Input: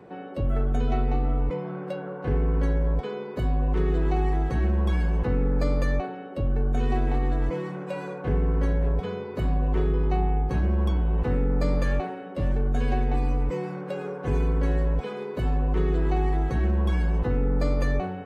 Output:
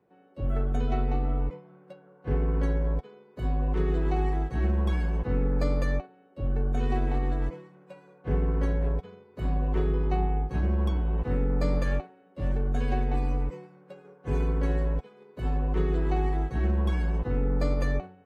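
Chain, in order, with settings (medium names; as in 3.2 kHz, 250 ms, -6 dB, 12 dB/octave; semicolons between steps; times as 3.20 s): upward expansion 2.5:1, over -34 dBFS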